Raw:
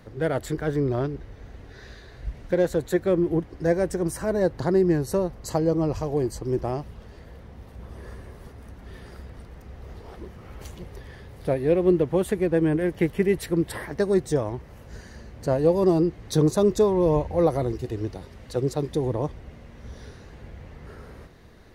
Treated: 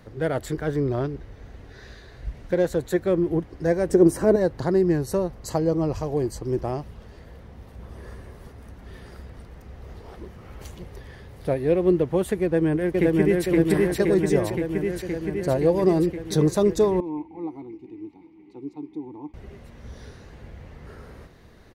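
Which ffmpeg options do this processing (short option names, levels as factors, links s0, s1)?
-filter_complex "[0:a]asettb=1/sr,asplit=3[s0][s1][s2];[s0]atrim=end=3.894[s3];[s1]atrim=start=3.89:end=4.36,asetpts=PTS-STARTPTS,afade=t=in:d=0.004:c=qsin,afade=t=out:st=0.466:d=0.004:c=qsin,equalizer=f=340:w=0.84:g=12.5[s4];[s2]atrim=start=4.356[s5];[s3][s4]acrossfade=d=0.004:c1=hsin:c2=qsin[s6];[s6][s5]acrossfade=d=0.004:c1=qsin:c2=hsin,asplit=2[s7][s8];[s8]afade=t=in:st=12.42:d=0.01,afade=t=out:st=13.46:d=0.01,aecho=0:1:520|1040|1560|2080|2600|3120|3640|4160|4680|5200|5720|6240:0.944061|0.708046|0.531034|0.398276|0.298707|0.22403|0.168023|0.126017|0.0945127|0.0708845|0.0531634|0.0398725[s9];[s7][s9]amix=inputs=2:normalize=0,asettb=1/sr,asplit=3[s10][s11][s12];[s10]atrim=end=17.004[s13];[s11]atrim=start=17:end=19.34,asetpts=PTS-STARTPTS,afade=t=in:d=0.004:c=qsin,afade=t=out:st=2.336:d=0.004:c=qsin,asplit=3[s14][s15][s16];[s14]bandpass=f=300:t=q:w=8,volume=1[s17];[s15]bandpass=f=870:t=q:w=8,volume=0.501[s18];[s16]bandpass=f=2240:t=q:w=8,volume=0.355[s19];[s17][s18][s19]amix=inputs=3:normalize=0[s20];[s12]atrim=start=19.336[s21];[s13][s20]acrossfade=d=0.004:c1=hsin:c2=qsin[s22];[s22][s21]acrossfade=d=0.004:c1=qsin:c2=hsin"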